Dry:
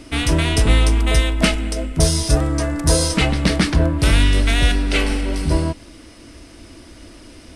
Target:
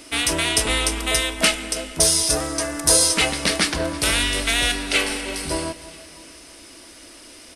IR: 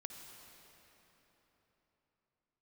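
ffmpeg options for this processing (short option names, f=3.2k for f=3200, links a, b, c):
-filter_complex "[0:a]highshelf=f=3.3k:g=6,asoftclip=type=hard:threshold=-2.5dB,crystalizer=i=1.5:c=0,bass=f=250:g=-14,treble=f=4k:g=-5,aecho=1:1:324|648|972|1296:0.1|0.055|0.0303|0.0166,asplit=2[a][b];[1:a]atrim=start_sample=2205,afade=t=out:st=0.32:d=0.01,atrim=end_sample=14553,asetrate=23814,aresample=44100[c];[b][c]afir=irnorm=-1:irlink=0,volume=-10.5dB[d];[a][d]amix=inputs=2:normalize=0,volume=-3.5dB"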